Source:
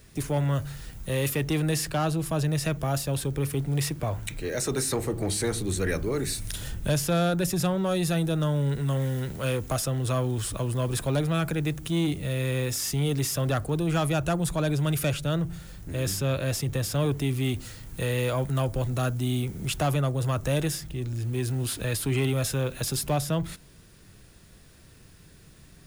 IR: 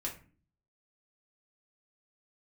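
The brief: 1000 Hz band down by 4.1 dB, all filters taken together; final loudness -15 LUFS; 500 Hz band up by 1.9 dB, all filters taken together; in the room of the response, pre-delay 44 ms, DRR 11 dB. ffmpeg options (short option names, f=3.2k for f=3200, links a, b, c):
-filter_complex "[0:a]equalizer=f=500:t=o:g=4.5,equalizer=f=1k:t=o:g=-8.5,asplit=2[a][b];[1:a]atrim=start_sample=2205,adelay=44[c];[b][c]afir=irnorm=-1:irlink=0,volume=-12dB[d];[a][d]amix=inputs=2:normalize=0,volume=12dB"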